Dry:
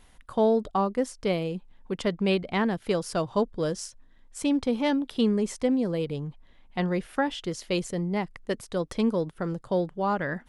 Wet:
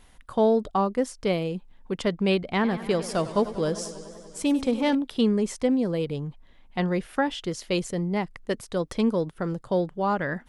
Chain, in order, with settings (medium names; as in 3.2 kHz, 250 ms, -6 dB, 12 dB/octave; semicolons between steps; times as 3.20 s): 2.52–4.95 s: modulated delay 97 ms, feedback 78%, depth 111 cents, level -14.5 dB; trim +1.5 dB